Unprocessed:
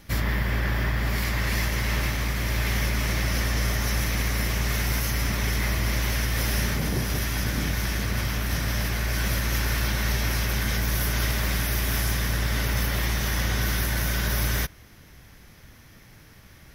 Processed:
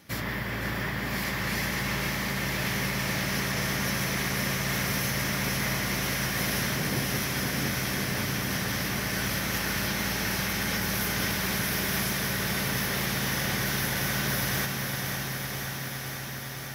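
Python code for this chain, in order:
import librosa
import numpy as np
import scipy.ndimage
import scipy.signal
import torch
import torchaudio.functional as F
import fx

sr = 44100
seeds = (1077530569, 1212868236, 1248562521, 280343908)

p1 = scipy.signal.sosfilt(scipy.signal.butter(2, 130.0, 'highpass', fs=sr, output='sos'), x)
p2 = p1 + fx.echo_diffused(p1, sr, ms=636, feedback_pct=70, wet_db=-8.5, dry=0)
p3 = fx.echo_crushed(p2, sr, ms=508, feedback_pct=80, bits=9, wet_db=-7.5)
y = p3 * librosa.db_to_amplitude(-2.5)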